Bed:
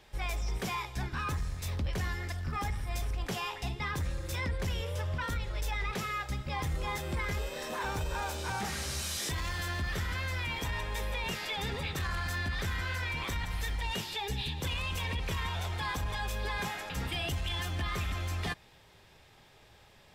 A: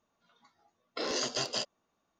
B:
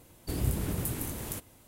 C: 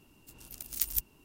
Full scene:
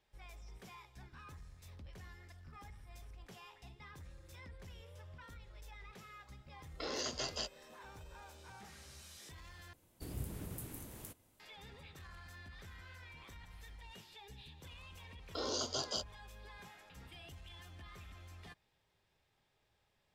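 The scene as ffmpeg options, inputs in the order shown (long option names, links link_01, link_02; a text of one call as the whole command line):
ffmpeg -i bed.wav -i cue0.wav -i cue1.wav -filter_complex "[1:a]asplit=2[link_01][link_02];[0:a]volume=-19.5dB[link_03];[link_02]asuperstop=centerf=2100:order=12:qfactor=1.5[link_04];[link_03]asplit=2[link_05][link_06];[link_05]atrim=end=9.734[link_07];[2:a]atrim=end=1.67,asetpts=PTS-STARTPTS,volume=-13dB[link_08];[link_06]atrim=start=11.396[link_09];[link_01]atrim=end=2.19,asetpts=PTS-STARTPTS,volume=-7dB,afade=type=in:duration=0.004:curve=hsin,afade=type=out:start_time=2.186:duration=0.004:curve=hsin,adelay=5830[link_10];[link_04]atrim=end=2.19,asetpts=PTS-STARTPTS,volume=-5dB,afade=type=in:duration=0.004:curve=hsin,afade=type=out:start_time=2.186:duration=0.004:curve=hsin,adelay=14380[link_11];[link_07][link_08]acrossfade=duration=0.004:curve1=hsin:curve2=hsin[link_12];[link_12][link_09]acrossfade=duration=0.004:curve1=hsin:curve2=hsin[link_13];[link_13][link_10][link_11]amix=inputs=3:normalize=0" out.wav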